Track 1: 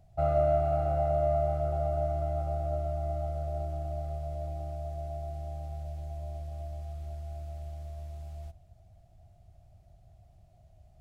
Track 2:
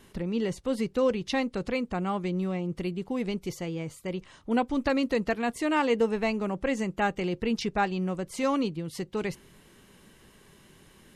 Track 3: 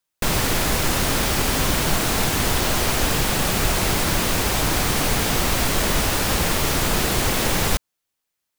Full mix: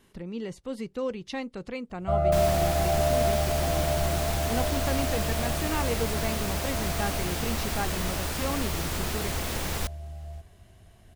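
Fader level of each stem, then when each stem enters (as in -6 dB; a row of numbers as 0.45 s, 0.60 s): +2.5 dB, -6.0 dB, -11.0 dB; 1.90 s, 0.00 s, 2.10 s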